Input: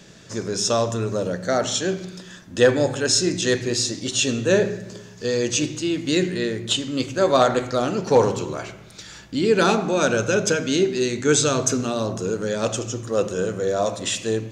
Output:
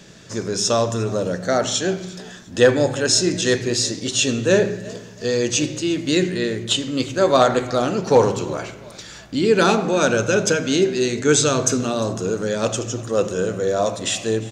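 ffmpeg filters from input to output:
-filter_complex "[0:a]asplit=4[s0][s1][s2][s3];[s1]adelay=351,afreqshift=55,volume=0.0891[s4];[s2]adelay=702,afreqshift=110,volume=0.0313[s5];[s3]adelay=1053,afreqshift=165,volume=0.011[s6];[s0][s4][s5][s6]amix=inputs=4:normalize=0,volume=1.26"

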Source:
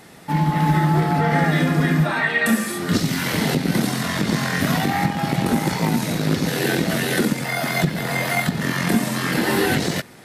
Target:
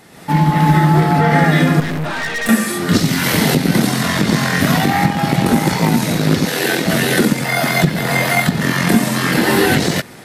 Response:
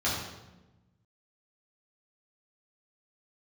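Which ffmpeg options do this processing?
-filter_complex "[0:a]dynaudnorm=f=110:g=3:m=2.51,asettb=1/sr,asplit=3[s0][s1][s2];[s0]atrim=end=1.804[s3];[s1]atrim=start=1.8:end=2.49,asetpts=PTS-STARTPTS,afade=t=in:d=0.004:c=qsin,afade=t=out:st=0.686:d=0.004:c=qsin,aeval=exprs='(tanh(8.91*val(0)+0.55)-tanh(0.55))/8.91':c=same[s4];[s2]atrim=start=2.486[s5];[s3][s4]acrossfade=d=0.004:c1=hsin:c2=qsin[s6];[s6][s5]acrossfade=d=0.004:c1=qsin:c2=hsin,asettb=1/sr,asplit=3[s7][s8][s9];[s7]atrim=end=3.234[s10];[s8]atrim=start=3.23:end=3.68,asetpts=PTS-STARTPTS,afade=t=in:d=0.004:c=qsin,afade=t=out:st=0.446:d=0.004:c=qsin,highshelf=f=9100:g=6[s11];[s9]atrim=start=3.676[s12];[s10][s11]acrossfade=d=0.004:c1=hsin:c2=qsin[s13];[s13][s12]acrossfade=d=0.004:c1=qsin:c2=hsin,asettb=1/sr,asplit=3[s14][s15][s16];[s14]atrim=end=6.454[s17];[s15]atrim=start=6.45:end=6.86,asetpts=PTS-STARTPTS,afade=t=in:d=0.004:c=qsin,afade=t=out:st=0.406:d=0.004:c=qsin,highpass=f=420:p=1[s18];[s16]atrim=start=6.856[s19];[s17][s18]acrossfade=d=0.004:c1=hsin:c2=qsin[s20];[s20][s19]acrossfade=d=0.004:c1=qsin:c2=hsin"

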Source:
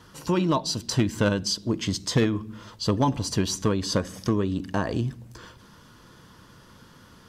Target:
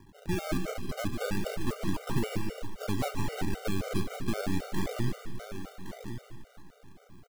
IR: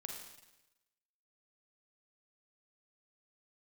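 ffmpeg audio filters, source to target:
-filter_complex "[0:a]aeval=exprs='if(lt(val(0),0),0.251*val(0),val(0))':c=same,acrusher=samples=33:mix=1:aa=0.000001:lfo=1:lforange=33:lforate=0.31,asoftclip=type=tanh:threshold=0.1,aecho=1:1:1115:0.335,asplit=2[s0][s1];[1:a]atrim=start_sample=2205,adelay=149[s2];[s1][s2]afir=irnorm=-1:irlink=0,volume=0.668[s3];[s0][s3]amix=inputs=2:normalize=0,afftfilt=real='re*gt(sin(2*PI*3.8*pts/sr)*(1-2*mod(floor(b*sr/1024/390),2)),0)':imag='im*gt(sin(2*PI*3.8*pts/sr)*(1-2*mod(floor(b*sr/1024/390),2)),0)':win_size=1024:overlap=0.75"

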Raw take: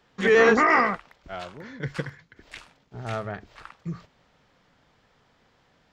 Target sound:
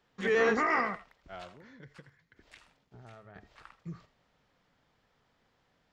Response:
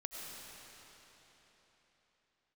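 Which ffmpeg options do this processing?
-filter_complex "[0:a]asettb=1/sr,asplit=3[s0][s1][s2];[s0]atrim=end=1.484[s3];[s1]atrim=start=1.48:end=3.36,asetpts=PTS-STARTPTS,afade=t=in:d=0.004:c=qsin,afade=t=out:st=1.876:d=0.004:c=qsin,acompressor=threshold=0.00794:ratio=4[s4];[s2]atrim=start=3.356[s5];[s3][s4]acrossfade=d=0.004:c1=hsin:c2=qsin[s6];[s6][s5]acrossfade=d=0.004:c1=qsin:c2=hsin[s7];[1:a]atrim=start_sample=2205,atrim=end_sample=3969[s8];[s7][s8]afir=irnorm=-1:irlink=0,volume=0.596"

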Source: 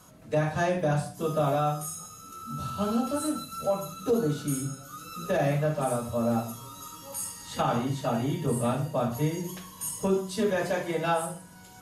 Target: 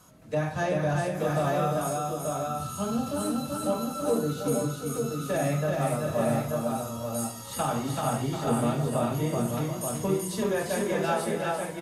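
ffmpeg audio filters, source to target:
-af "aecho=1:1:285|383|737|882:0.178|0.708|0.316|0.596,volume=0.794"

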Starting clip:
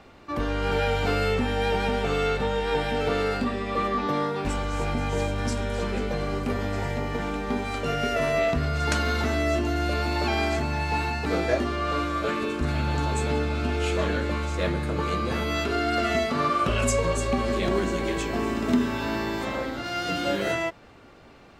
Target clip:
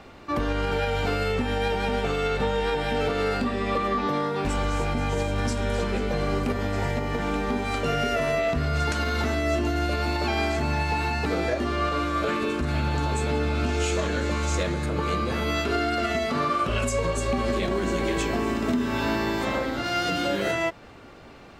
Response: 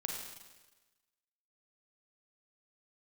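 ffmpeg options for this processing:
-filter_complex "[0:a]alimiter=limit=0.1:level=0:latency=1:release=210,asettb=1/sr,asplit=3[s0][s1][s2];[s0]atrim=end=13.664[s3];[s1]atrim=start=13.66:end=14.86,asetpts=PTS-STARTPTS,afade=t=in:d=0.004:c=qsin,afade=t=out:st=1.196:d=0.004:c=qsin,equalizer=f=6700:w=1.5:g=9[s4];[s2]atrim=start=14.856[s5];[s3][s4]acrossfade=d=0.004:c1=hsin:c2=qsin[s6];[s6][s5]acrossfade=d=0.004:c1=qsin:c2=hsin,volume=1.58"

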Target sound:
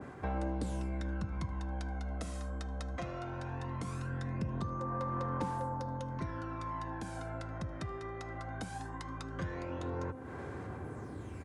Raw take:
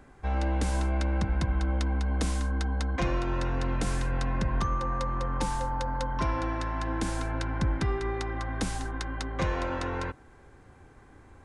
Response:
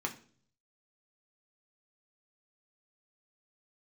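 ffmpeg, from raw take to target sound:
-filter_complex "[0:a]highpass=f=81:w=0.5412,highpass=f=81:w=1.3066,bandreject=f=830:w=14,bandreject=f=259:t=h:w=4,bandreject=f=518:t=h:w=4,bandreject=f=777:t=h:w=4,bandreject=f=1036:t=h:w=4,bandreject=f=1295:t=h:w=4,bandreject=f=1554:t=h:w=4,bandreject=f=1813:t=h:w=4,bandreject=f=2072:t=h:w=4,bandreject=f=2331:t=h:w=4,bandreject=f=2590:t=h:w=4,bandreject=f=2849:t=h:w=4,bandreject=f=3108:t=h:w=4,bandreject=f=3367:t=h:w=4,bandreject=f=3626:t=h:w=4,bandreject=f=3885:t=h:w=4,bandreject=f=4144:t=h:w=4,bandreject=f=4403:t=h:w=4,bandreject=f=4662:t=h:w=4,bandreject=f=4921:t=h:w=4,bandreject=f=5180:t=h:w=4,bandreject=f=5439:t=h:w=4,bandreject=f=5698:t=h:w=4,bandreject=f=5957:t=h:w=4,bandreject=f=6216:t=h:w=4,bandreject=f=6475:t=h:w=4,bandreject=f=6734:t=h:w=4,bandreject=f=6993:t=h:w=4,bandreject=f=7252:t=h:w=4,bandreject=f=7511:t=h:w=4,bandreject=f=7770:t=h:w=4,bandreject=f=8029:t=h:w=4,bandreject=f=8288:t=h:w=4,bandreject=f=8547:t=h:w=4,areverse,acompressor=mode=upward:threshold=0.00794:ratio=2.5,areverse,highshelf=f=9600:g=3.5,acompressor=threshold=0.00501:ratio=2.5,aphaser=in_gain=1:out_gain=1:delay=1.6:decay=0.49:speed=0.19:type=sinusoidal,asplit=2[s0][s1];[s1]aecho=0:1:78:0.0708[s2];[s0][s2]amix=inputs=2:normalize=0,adynamicequalizer=threshold=0.00141:dfrequency=1600:dqfactor=0.7:tfrequency=1600:tqfactor=0.7:attack=5:release=100:ratio=0.375:range=4:mode=cutabove:tftype=highshelf,volume=1.41"

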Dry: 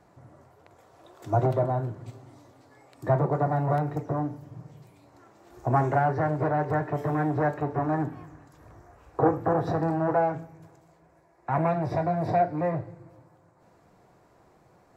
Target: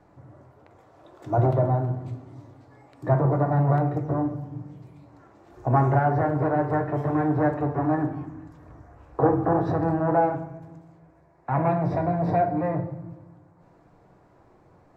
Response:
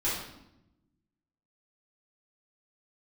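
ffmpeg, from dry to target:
-filter_complex "[0:a]lowpass=f=3500:p=1,asplit=2[s0][s1];[1:a]atrim=start_sample=2205,lowpass=2200,lowshelf=f=230:g=7[s2];[s1][s2]afir=irnorm=-1:irlink=0,volume=0.2[s3];[s0][s3]amix=inputs=2:normalize=0"

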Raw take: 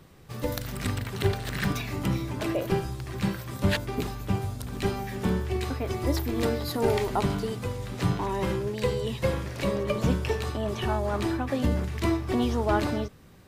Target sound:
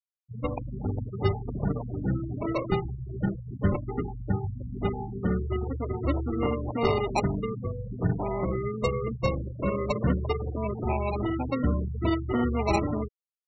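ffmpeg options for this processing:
-af "acrusher=samples=27:mix=1:aa=0.000001,afftfilt=real='re*gte(hypot(re,im),0.0562)':imag='im*gte(hypot(re,im),0.0562)':win_size=1024:overlap=0.75"

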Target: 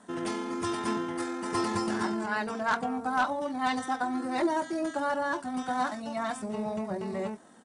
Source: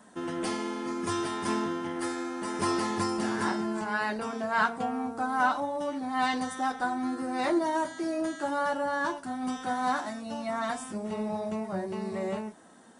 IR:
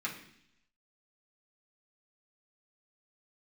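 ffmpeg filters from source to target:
-af "aeval=exprs='0.141*(abs(mod(val(0)/0.141+3,4)-2)-1)':c=same,aresample=22050,aresample=44100,atempo=1.7"

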